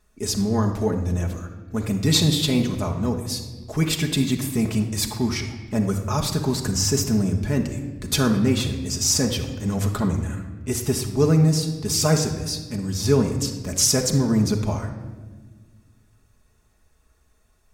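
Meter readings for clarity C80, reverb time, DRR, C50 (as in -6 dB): 10.0 dB, 1.4 s, 1.5 dB, 7.5 dB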